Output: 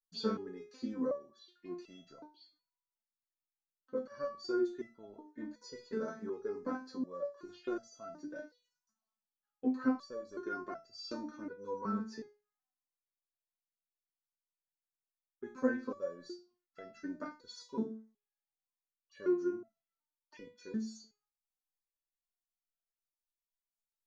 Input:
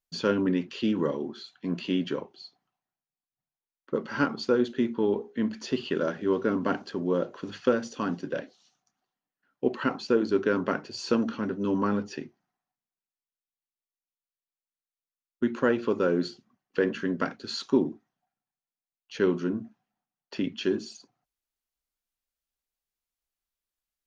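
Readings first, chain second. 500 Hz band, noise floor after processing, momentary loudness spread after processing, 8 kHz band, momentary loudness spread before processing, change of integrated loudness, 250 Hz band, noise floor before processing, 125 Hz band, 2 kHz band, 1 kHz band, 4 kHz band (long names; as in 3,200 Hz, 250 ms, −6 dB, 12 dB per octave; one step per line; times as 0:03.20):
−11.5 dB, below −85 dBFS, 19 LU, can't be measured, 10 LU, −11.0 dB, −11.0 dB, below −85 dBFS, −17.0 dB, −13.5 dB, −11.0 dB, −13.0 dB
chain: phaser swept by the level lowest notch 370 Hz, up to 3,000 Hz, full sweep at −31.5 dBFS
step-sequenced resonator 2.7 Hz 220–670 Hz
level +5 dB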